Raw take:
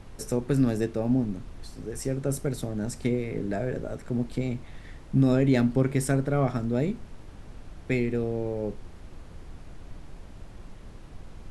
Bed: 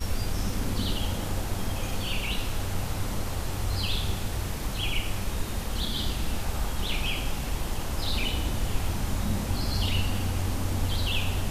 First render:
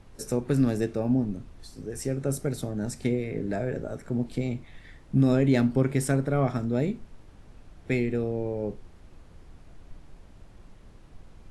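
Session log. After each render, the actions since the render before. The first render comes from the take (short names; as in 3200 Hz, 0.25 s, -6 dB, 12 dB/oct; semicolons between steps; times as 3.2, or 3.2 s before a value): noise print and reduce 6 dB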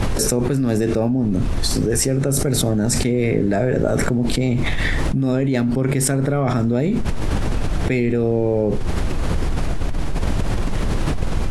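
fast leveller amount 100%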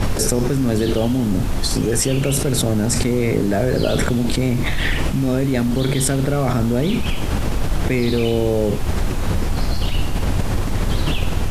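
add bed +1 dB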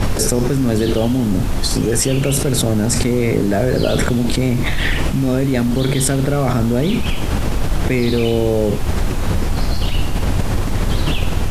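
gain +2 dB; limiter -3 dBFS, peak gain reduction 1 dB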